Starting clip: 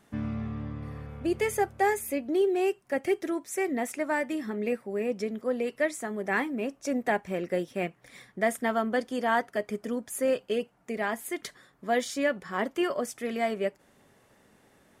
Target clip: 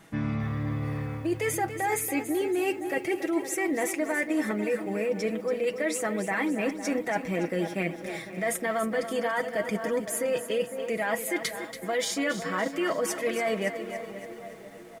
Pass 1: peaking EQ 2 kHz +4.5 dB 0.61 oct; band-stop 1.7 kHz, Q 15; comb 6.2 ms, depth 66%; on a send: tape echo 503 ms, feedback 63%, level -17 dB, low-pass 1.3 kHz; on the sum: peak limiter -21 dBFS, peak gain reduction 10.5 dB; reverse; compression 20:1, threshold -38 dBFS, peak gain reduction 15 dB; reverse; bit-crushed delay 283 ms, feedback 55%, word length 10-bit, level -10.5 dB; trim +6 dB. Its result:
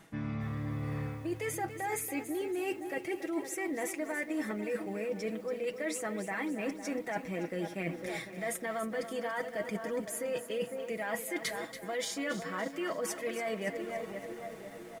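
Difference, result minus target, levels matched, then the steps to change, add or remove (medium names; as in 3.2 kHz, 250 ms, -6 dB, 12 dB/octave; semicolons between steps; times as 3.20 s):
compression: peak gain reduction +7.5 dB
change: compression 20:1, threshold -30 dBFS, peak gain reduction 7.5 dB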